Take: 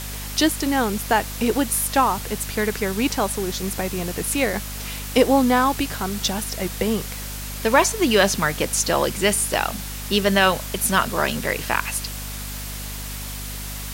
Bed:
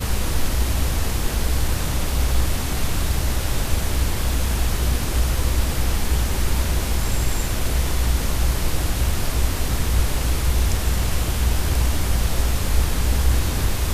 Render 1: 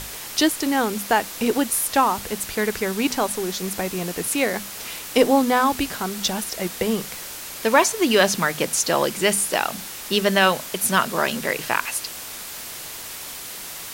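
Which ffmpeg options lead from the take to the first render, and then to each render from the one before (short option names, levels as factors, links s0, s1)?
-af "bandreject=f=50:t=h:w=6,bandreject=f=100:t=h:w=6,bandreject=f=150:t=h:w=6,bandreject=f=200:t=h:w=6,bandreject=f=250:t=h:w=6"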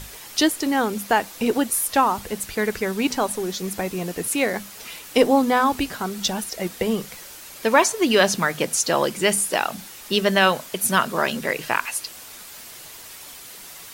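-af "afftdn=nr=7:nf=-35"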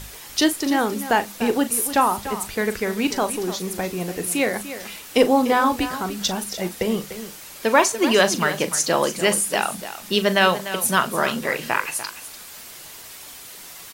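-filter_complex "[0:a]asplit=2[s0][s1];[s1]adelay=39,volume=0.237[s2];[s0][s2]amix=inputs=2:normalize=0,aecho=1:1:295:0.237"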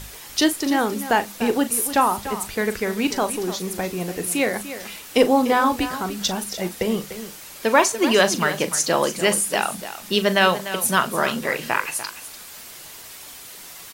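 -af anull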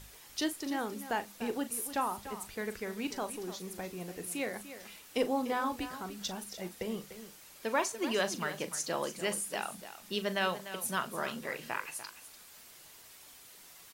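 -af "volume=0.188"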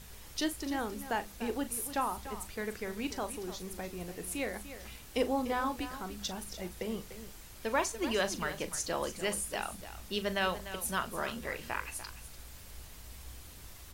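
-filter_complex "[1:a]volume=0.0282[s0];[0:a][s0]amix=inputs=2:normalize=0"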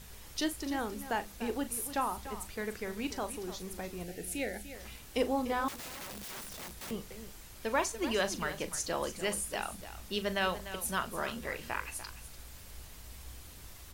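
-filter_complex "[0:a]asettb=1/sr,asplit=3[s0][s1][s2];[s0]atrim=end=4.044[s3];[s1]atrim=start=4.04:end=4.75,asetpts=PTS-STARTPTS,afade=t=in:d=0.004:c=qsin,afade=t=out:st=0.706:d=0.004:c=qsin,asuperstop=centerf=1100:order=4:qfactor=1.8[s4];[s2]atrim=start=4.746[s5];[s3][s4]acrossfade=d=0.004:c1=hsin:c2=qsin[s6];[s6][s5]acrossfade=d=0.004:c1=qsin:c2=hsin,asettb=1/sr,asplit=3[s7][s8][s9];[s7]atrim=end=5.684[s10];[s8]atrim=start=5.68:end=6.91,asetpts=PTS-STARTPTS,afade=t=in:d=0.004:c=qsin,afade=t=out:st=1.226:d=0.004:c=qsin,aeval=exprs='(mod(84.1*val(0)+1,2)-1)/84.1':c=same[s11];[s9]atrim=start=6.906[s12];[s10][s11]acrossfade=d=0.004:c1=hsin:c2=qsin[s13];[s13][s12]acrossfade=d=0.004:c1=qsin:c2=hsin"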